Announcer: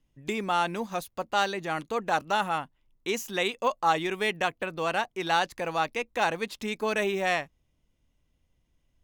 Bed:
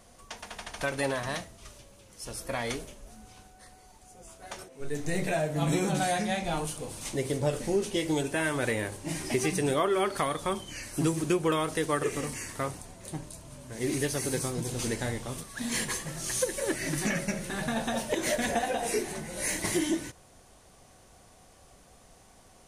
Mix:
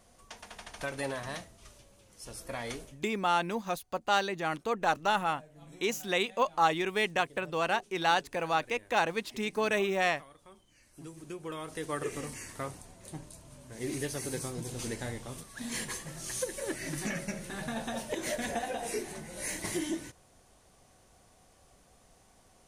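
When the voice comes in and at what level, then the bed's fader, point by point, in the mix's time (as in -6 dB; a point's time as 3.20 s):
2.75 s, -1.5 dB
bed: 2.86 s -5.5 dB
3.12 s -25 dB
10.71 s -25 dB
12.01 s -5.5 dB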